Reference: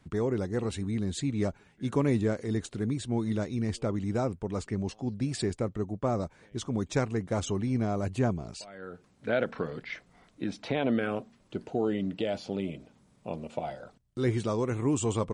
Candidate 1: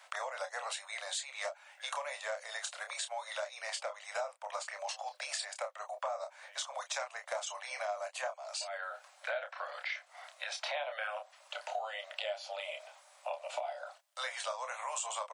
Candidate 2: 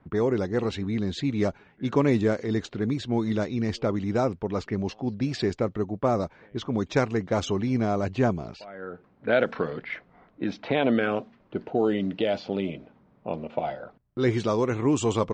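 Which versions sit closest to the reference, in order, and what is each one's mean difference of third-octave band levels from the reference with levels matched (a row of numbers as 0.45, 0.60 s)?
2, 1; 2.5, 19.0 dB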